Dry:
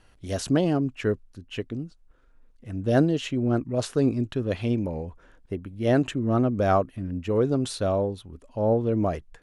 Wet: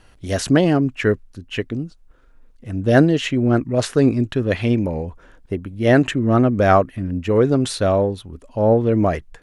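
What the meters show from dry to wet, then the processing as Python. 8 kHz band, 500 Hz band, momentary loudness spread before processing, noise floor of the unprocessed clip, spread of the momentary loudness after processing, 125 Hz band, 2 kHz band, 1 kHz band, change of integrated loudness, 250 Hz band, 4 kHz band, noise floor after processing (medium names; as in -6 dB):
+7.0 dB, +7.0 dB, 13 LU, -58 dBFS, 14 LU, +7.0 dB, +11.5 dB, +7.5 dB, +7.5 dB, +7.0 dB, +8.0 dB, -51 dBFS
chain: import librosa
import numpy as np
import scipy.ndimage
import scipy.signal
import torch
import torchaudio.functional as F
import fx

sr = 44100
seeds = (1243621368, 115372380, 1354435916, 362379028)

y = fx.dynamic_eq(x, sr, hz=1900.0, q=2.0, threshold_db=-49.0, ratio=4.0, max_db=7)
y = F.gain(torch.from_numpy(y), 7.0).numpy()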